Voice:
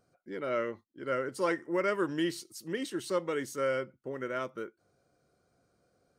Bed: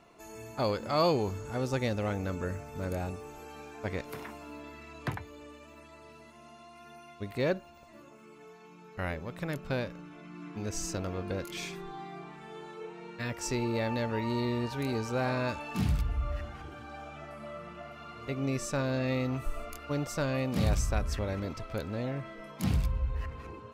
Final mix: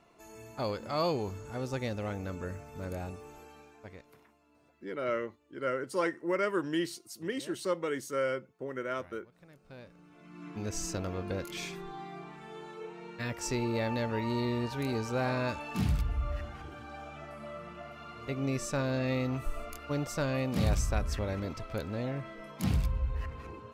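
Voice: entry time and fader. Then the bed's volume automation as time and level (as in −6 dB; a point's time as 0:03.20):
4.55 s, −0.5 dB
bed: 0:03.37 −4 dB
0:04.35 −22 dB
0:09.56 −22 dB
0:10.48 −0.5 dB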